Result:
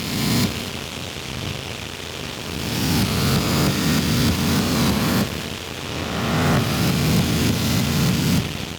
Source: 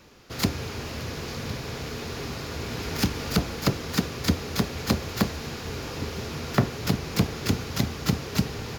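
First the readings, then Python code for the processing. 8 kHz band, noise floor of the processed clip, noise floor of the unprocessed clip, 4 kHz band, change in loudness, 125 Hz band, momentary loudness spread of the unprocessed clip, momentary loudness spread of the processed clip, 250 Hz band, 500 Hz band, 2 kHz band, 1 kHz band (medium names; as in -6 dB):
+9.0 dB, -32 dBFS, -37 dBFS, +9.0 dB, +8.0 dB, +7.5 dB, 8 LU, 10 LU, +8.0 dB, +5.5 dB, +8.0 dB, +7.5 dB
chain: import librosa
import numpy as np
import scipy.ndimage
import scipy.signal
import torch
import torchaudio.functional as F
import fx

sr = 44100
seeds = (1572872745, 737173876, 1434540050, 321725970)

y = fx.spec_swells(x, sr, rise_s=2.29)
y = fx.dmg_noise_band(y, sr, seeds[0], low_hz=2300.0, high_hz=3700.0, level_db=-36.0)
y = fx.echo_heads(y, sr, ms=80, heads='all three', feedback_pct=59, wet_db=-17.5)
y = 10.0 ** (-13.0 / 20.0) * np.tanh(y / 10.0 ** (-13.0 / 20.0))
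y = fx.cheby_harmonics(y, sr, harmonics=(7, 8), levels_db=(-19, -17), full_scale_db=-13.0)
y = scipy.signal.sosfilt(scipy.signal.butter(2, 84.0, 'highpass', fs=sr, output='sos'), y)
y = fx.low_shelf(y, sr, hz=140.0, db=4.5)
y = fx.record_warp(y, sr, rpm=33.33, depth_cents=100.0)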